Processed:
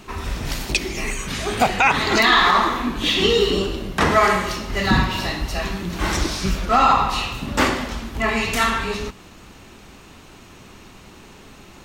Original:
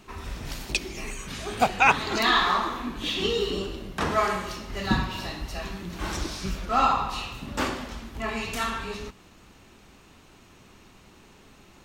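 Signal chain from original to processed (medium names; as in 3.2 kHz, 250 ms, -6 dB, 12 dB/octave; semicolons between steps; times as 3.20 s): dynamic bell 2 kHz, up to +6 dB, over -50 dBFS, Q 6.8; loudness maximiser +13.5 dB; trim -4.5 dB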